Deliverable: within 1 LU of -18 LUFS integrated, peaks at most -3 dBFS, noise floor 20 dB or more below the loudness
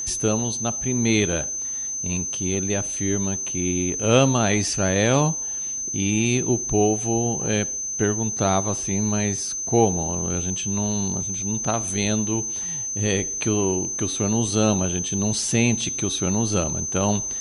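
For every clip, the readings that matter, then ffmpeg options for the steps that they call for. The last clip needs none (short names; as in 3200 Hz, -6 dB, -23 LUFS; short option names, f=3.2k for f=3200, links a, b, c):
steady tone 6200 Hz; tone level -26 dBFS; loudness -22.0 LUFS; peak -4.0 dBFS; loudness target -18.0 LUFS
-> -af "bandreject=f=6.2k:w=30"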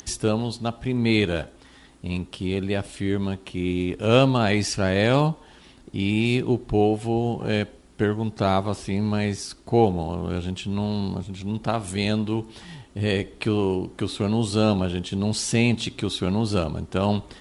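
steady tone none; loudness -24.5 LUFS; peak -4.5 dBFS; loudness target -18.0 LUFS
-> -af "volume=6.5dB,alimiter=limit=-3dB:level=0:latency=1"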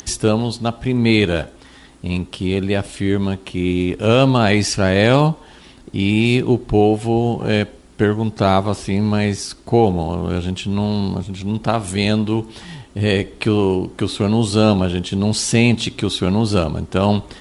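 loudness -18.0 LUFS; peak -3.0 dBFS; noise floor -44 dBFS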